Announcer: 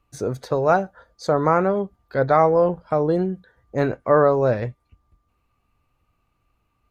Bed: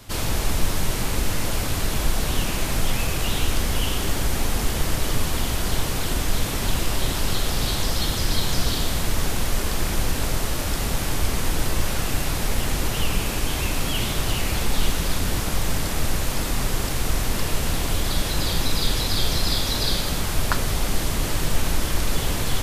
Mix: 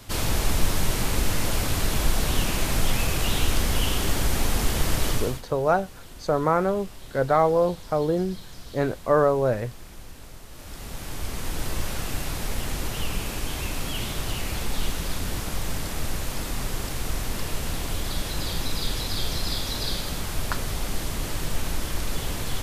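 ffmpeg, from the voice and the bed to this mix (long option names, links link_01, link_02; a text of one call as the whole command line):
ffmpeg -i stem1.wav -i stem2.wav -filter_complex "[0:a]adelay=5000,volume=-3.5dB[link_01];[1:a]volume=14dB,afade=type=out:start_time=5.08:duration=0.34:silence=0.105925,afade=type=in:start_time=10.48:duration=1.25:silence=0.188365[link_02];[link_01][link_02]amix=inputs=2:normalize=0" out.wav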